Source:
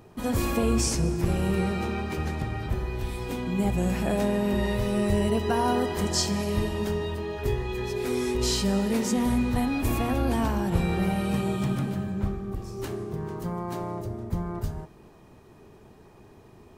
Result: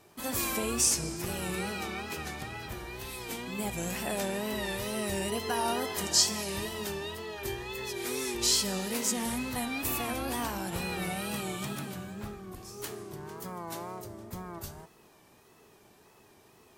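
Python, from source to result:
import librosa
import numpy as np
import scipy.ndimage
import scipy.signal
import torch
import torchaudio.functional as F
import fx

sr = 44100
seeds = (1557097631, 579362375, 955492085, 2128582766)

y = fx.tilt_eq(x, sr, slope=3.0)
y = fx.wow_flutter(y, sr, seeds[0], rate_hz=2.1, depth_cents=94.0)
y = fx.dmg_crackle(y, sr, seeds[1], per_s=39.0, level_db=-50.0)
y = F.gain(torch.from_numpy(y), -4.0).numpy()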